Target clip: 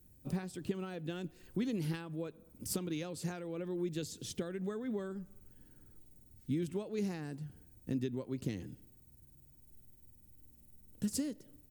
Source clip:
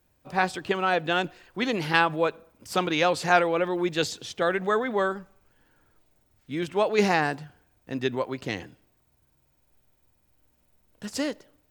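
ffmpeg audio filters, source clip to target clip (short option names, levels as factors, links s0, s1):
-af "acompressor=threshold=0.0141:ratio=5,firequalizer=gain_entry='entry(220,0);entry(730,-19);entry(9500,0)':delay=0.05:min_phase=1,volume=2.24"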